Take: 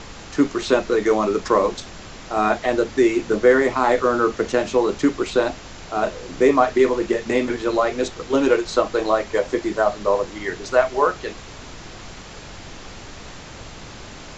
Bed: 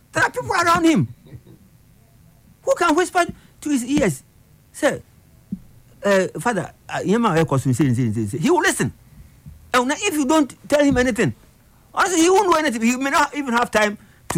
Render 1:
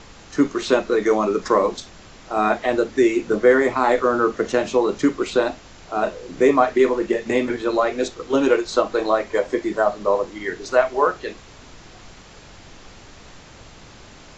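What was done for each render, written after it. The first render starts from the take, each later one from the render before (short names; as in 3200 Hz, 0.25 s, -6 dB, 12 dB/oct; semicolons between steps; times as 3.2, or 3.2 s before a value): noise print and reduce 6 dB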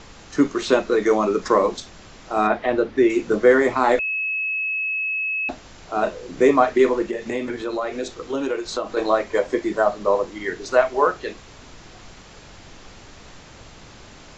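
2.47–3.1 air absorption 180 m; 3.99–5.49 bleep 2580 Hz -21.5 dBFS; 7.02–8.97 compressor 2:1, threshold -26 dBFS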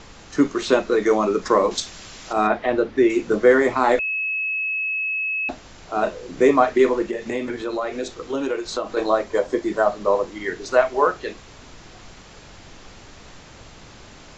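1.71–2.33 high shelf 2000 Hz +10.5 dB; 9.04–9.68 bell 2200 Hz -5.5 dB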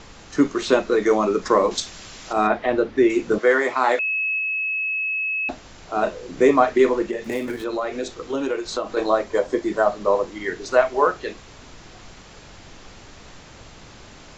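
3.38–4.39 weighting filter A; 7.24–7.64 switching dead time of 0.067 ms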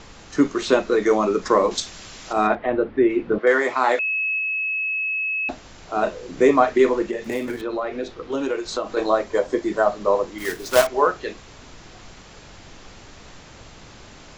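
2.55–3.47 air absorption 380 m; 7.61–8.32 air absorption 160 m; 10.38–10.87 block floating point 3-bit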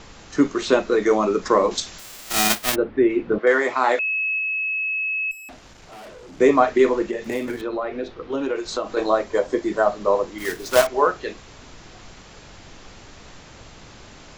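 1.98–2.74 spectral whitening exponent 0.1; 5.31–6.4 tube stage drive 39 dB, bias 0.45; 7.69–8.56 air absorption 110 m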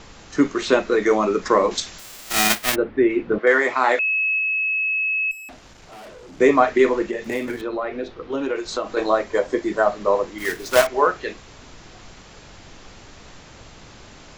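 dynamic EQ 2000 Hz, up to +4 dB, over -38 dBFS, Q 1.5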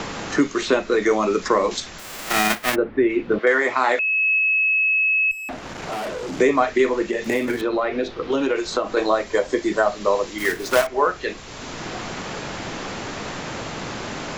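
three-band squash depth 70%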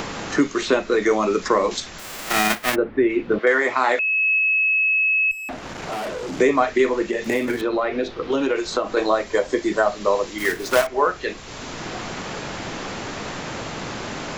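upward compressor, threshold -31 dBFS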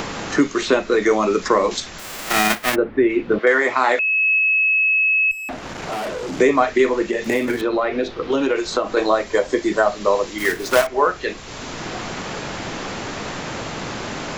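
gain +2 dB; limiter -3 dBFS, peak gain reduction 1 dB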